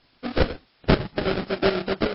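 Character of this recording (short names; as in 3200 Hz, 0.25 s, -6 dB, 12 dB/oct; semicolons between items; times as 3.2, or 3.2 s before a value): aliases and images of a low sample rate 1000 Hz, jitter 20%; chopped level 8 Hz, depth 60%, duty 55%; a quantiser's noise floor 10-bit, dither triangular; MP3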